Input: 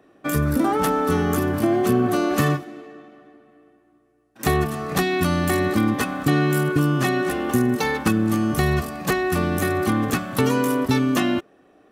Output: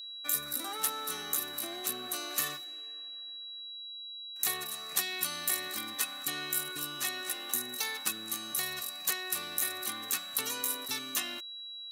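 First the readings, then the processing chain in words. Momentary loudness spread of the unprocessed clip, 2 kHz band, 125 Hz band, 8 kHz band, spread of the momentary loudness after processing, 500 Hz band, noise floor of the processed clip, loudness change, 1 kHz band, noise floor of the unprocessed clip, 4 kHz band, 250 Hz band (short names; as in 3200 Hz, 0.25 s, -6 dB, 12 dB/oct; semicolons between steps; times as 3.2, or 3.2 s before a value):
4 LU, -12.0 dB, -34.0 dB, +1.0 dB, 10 LU, -24.5 dB, -44 dBFS, -12.0 dB, -17.0 dB, -58 dBFS, -0.5 dB, -28.0 dB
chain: whine 3900 Hz -36 dBFS; differentiator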